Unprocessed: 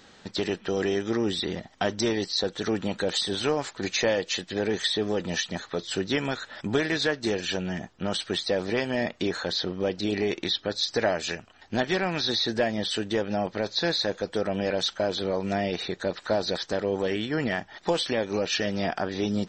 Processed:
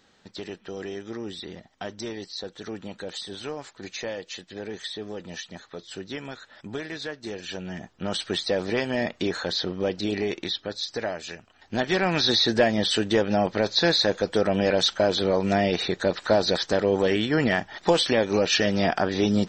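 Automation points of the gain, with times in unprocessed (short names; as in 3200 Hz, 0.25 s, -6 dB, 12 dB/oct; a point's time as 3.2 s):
7.23 s -8.5 dB
8.23 s +1 dB
9.95 s +1 dB
11.31 s -6.5 dB
12.14 s +5 dB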